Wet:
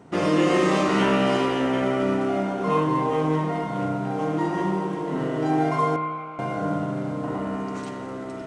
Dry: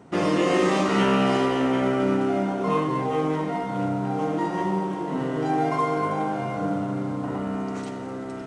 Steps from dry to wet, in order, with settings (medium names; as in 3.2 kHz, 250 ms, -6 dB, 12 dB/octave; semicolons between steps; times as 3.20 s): 5.96–6.39 s: two resonant band-passes 1.7 kHz, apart 0.83 oct; spring tank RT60 1.6 s, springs 32 ms, chirp 40 ms, DRR 6.5 dB